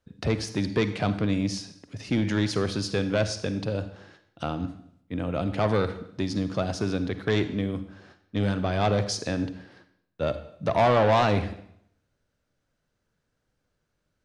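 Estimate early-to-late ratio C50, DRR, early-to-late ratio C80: 12.0 dB, 11.0 dB, 14.0 dB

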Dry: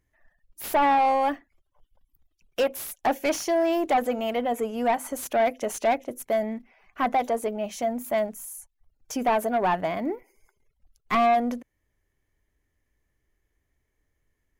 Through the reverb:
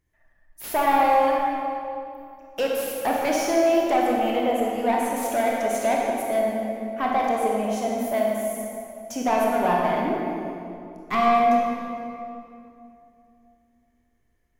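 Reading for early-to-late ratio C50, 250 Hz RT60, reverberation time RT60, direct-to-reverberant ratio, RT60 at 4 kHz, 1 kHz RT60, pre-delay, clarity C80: -1.5 dB, 3.4 s, 2.7 s, -3.0 dB, 1.8 s, 2.5 s, 22 ms, 0.0 dB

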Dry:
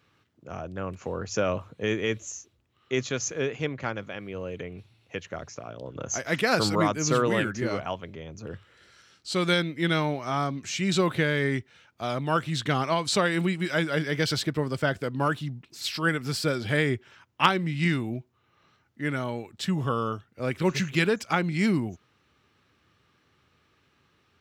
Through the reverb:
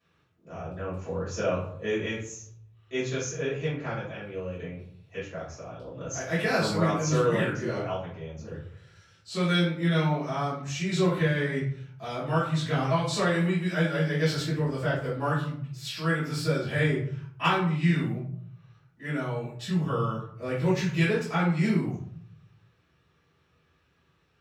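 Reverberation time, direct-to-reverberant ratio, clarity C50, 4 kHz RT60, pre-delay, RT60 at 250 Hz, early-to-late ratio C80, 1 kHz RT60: 0.60 s, -11.5 dB, 4.0 dB, 0.35 s, 3 ms, 1.0 s, 9.0 dB, 0.55 s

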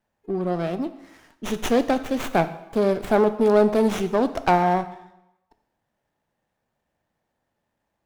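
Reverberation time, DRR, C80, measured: 0.90 s, 11.0 dB, 15.5 dB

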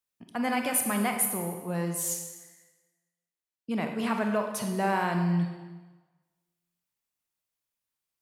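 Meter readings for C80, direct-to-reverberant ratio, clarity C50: 7.0 dB, 3.5 dB, 5.0 dB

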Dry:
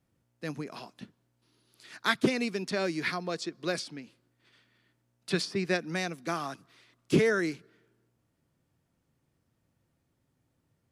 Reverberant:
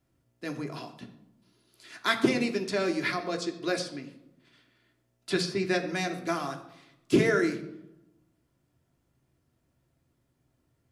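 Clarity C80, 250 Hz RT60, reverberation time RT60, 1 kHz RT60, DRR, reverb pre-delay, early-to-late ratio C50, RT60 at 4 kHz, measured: 13.5 dB, 1.1 s, 0.85 s, 0.75 s, 3.0 dB, 3 ms, 11.0 dB, 0.50 s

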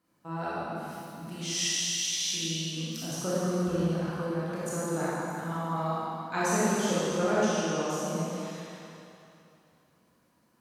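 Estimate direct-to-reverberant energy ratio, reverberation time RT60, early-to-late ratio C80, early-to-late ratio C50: -9.5 dB, 2.8 s, -3.5 dB, -6.0 dB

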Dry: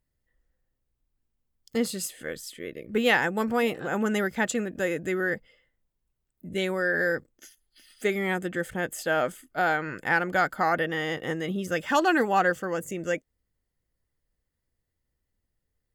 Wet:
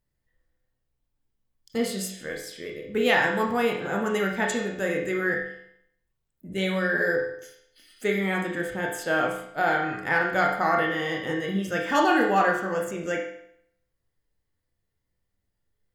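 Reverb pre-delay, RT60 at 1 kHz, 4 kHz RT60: 21 ms, 0.70 s, 0.65 s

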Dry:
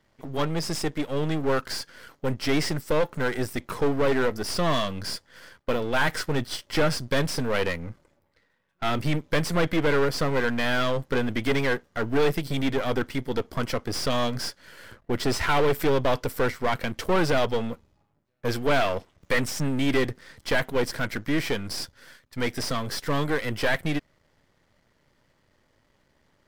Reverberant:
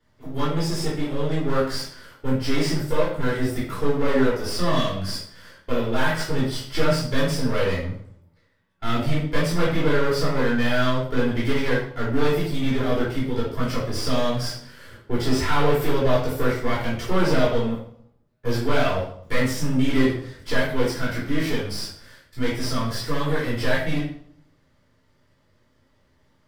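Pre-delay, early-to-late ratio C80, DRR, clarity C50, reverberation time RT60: 3 ms, 8.0 dB, -7.5 dB, 2.5 dB, 0.65 s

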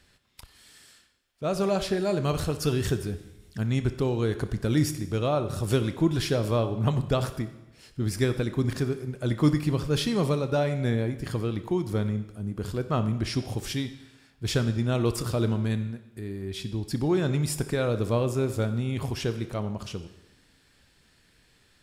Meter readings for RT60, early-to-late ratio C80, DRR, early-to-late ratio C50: 0.95 s, 13.5 dB, 9.5 dB, 11.5 dB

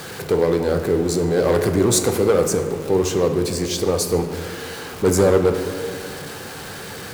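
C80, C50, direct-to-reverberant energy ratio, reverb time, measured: 9.0 dB, 7.5 dB, 5.5 dB, 2.3 s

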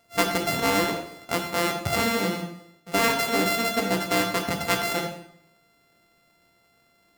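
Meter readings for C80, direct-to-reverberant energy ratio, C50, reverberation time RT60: 10.0 dB, 2.5 dB, 6.5 dB, 0.70 s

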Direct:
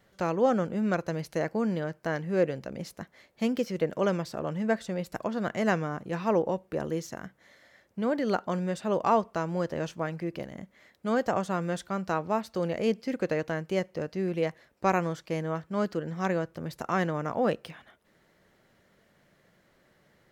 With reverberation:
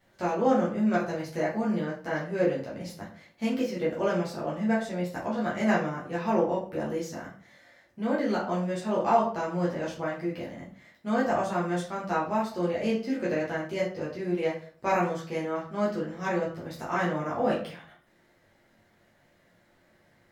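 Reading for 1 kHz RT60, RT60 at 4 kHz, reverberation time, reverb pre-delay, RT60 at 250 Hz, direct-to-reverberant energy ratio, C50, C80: 0.45 s, 0.30 s, 0.45 s, 7 ms, 0.50 s, -7.5 dB, 6.5 dB, 11.5 dB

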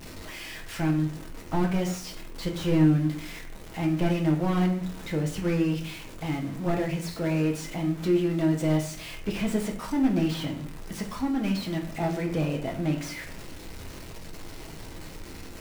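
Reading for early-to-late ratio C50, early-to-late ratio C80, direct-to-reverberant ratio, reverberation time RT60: 9.5 dB, 13.0 dB, 0.5 dB, 0.45 s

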